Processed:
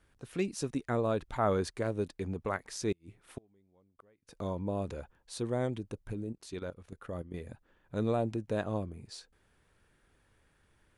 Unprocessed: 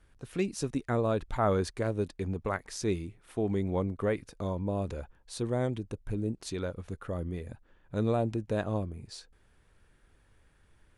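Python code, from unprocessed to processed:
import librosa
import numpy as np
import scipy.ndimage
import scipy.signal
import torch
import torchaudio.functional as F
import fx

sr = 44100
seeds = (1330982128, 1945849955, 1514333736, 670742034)

y = fx.low_shelf(x, sr, hz=65.0, db=-9.5)
y = fx.gate_flip(y, sr, shuts_db=-27.0, range_db=-35, at=(2.92, 4.35))
y = fx.level_steps(y, sr, step_db=12, at=(6.13, 7.34))
y = y * librosa.db_to_amplitude(-1.5)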